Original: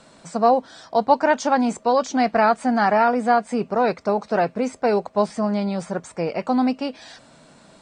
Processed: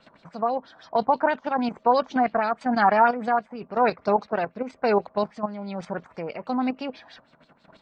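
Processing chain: level quantiser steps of 10 dB; tremolo 1 Hz, depth 46%; LFO low-pass sine 6.2 Hz 970–4500 Hz

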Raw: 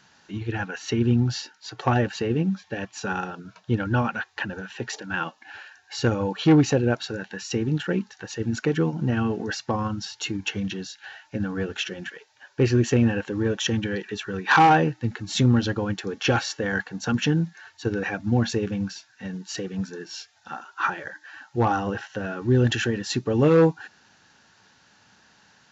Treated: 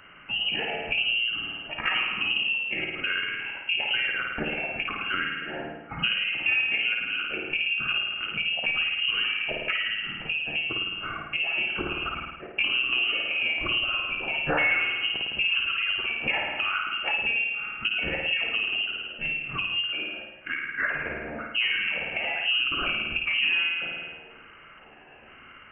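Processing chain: trilling pitch shifter +7.5 st, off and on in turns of 0.486 s; flutter echo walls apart 9.2 m, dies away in 0.88 s; inverted band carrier 3000 Hz; compressor 3:1, threshold -36 dBFS, peak gain reduction 19.5 dB; gain +7.5 dB

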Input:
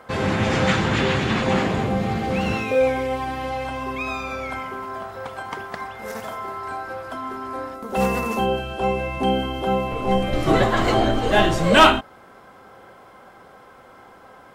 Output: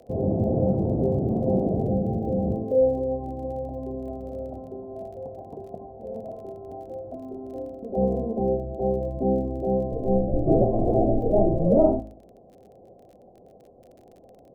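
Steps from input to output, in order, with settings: Chebyshev low-pass 700 Hz, order 5; de-hum 53.41 Hz, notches 38; crackle 29/s -44 dBFS

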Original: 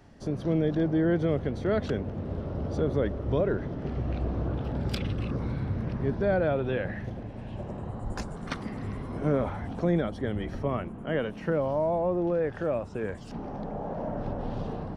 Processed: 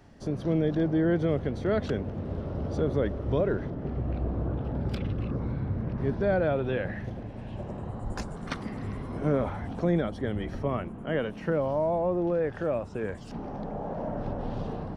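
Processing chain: 3.7–5.98 high shelf 2400 Hz -11.5 dB

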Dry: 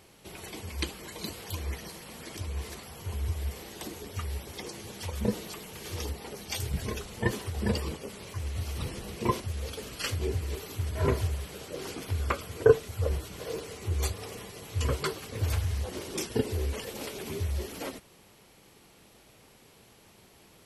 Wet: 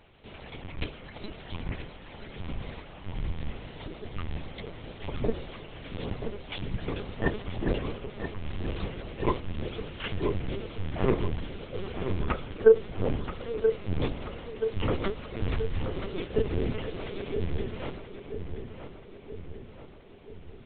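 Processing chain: dynamic EQ 390 Hz, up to +4 dB, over -45 dBFS, Q 2.4; LPC vocoder at 8 kHz pitch kept; on a send: darkening echo 0.979 s, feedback 58%, low-pass 2700 Hz, level -8 dB

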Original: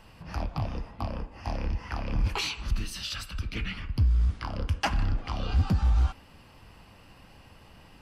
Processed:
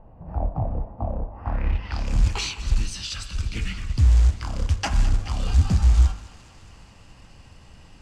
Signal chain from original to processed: short-mantissa float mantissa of 2-bit; low shelf 140 Hz +9 dB; de-hum 49.61 Hz, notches 34; low-pass sweep 710 Hz -> 7300 Hz, 1.25–2.12; thinning echo 0.212 s, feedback 70%, high-pass 250 Hz, level -15.5 dB

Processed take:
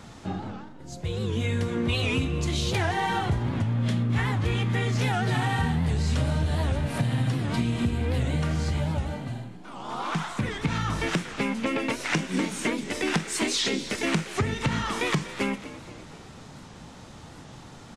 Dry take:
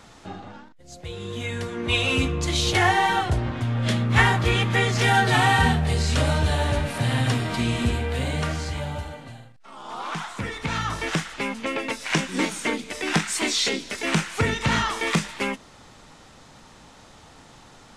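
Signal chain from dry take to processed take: bell 140 Hz +8.5 dB 2.4 oct; compressor, threshold -23 dBFS, peak gain reduction 13.5 dB; frequency-shifting echo 0.244 s, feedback 51%, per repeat +56 Hz, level -15.5 dB; on a send at -15.5 dB: reverb RT60 0.55 s, pre-delay 21 ms; on the sum: record warp 78 rpm, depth 160 cents

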